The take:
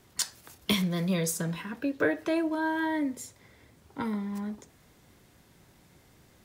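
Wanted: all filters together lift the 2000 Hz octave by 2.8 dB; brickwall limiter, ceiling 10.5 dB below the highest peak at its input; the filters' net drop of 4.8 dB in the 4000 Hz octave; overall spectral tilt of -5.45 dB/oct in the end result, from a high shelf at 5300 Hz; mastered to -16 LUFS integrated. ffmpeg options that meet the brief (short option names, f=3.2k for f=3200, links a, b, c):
-af "equalizer=f=2k:t=o:g=5.5,equalizer=f=4k:t=o:g=-5.5,highshelf=f=5.3k:g=-6.5,volume=16.5dB,alimiter=limit=-6.5dB:level=0:latency=1"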